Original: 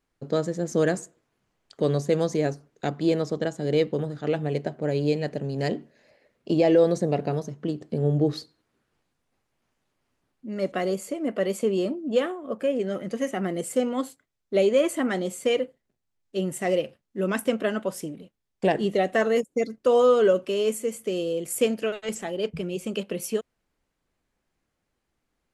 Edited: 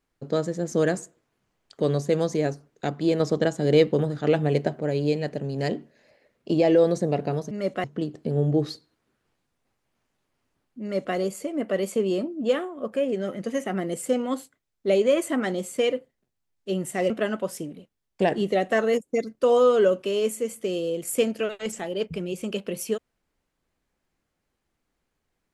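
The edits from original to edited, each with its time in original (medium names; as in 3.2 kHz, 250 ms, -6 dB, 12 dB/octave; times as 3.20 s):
3.20–4.81 s: gain +4.5 dB
10.49–10.82 s: copy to 7.51 s
16.77–17.53 s: delete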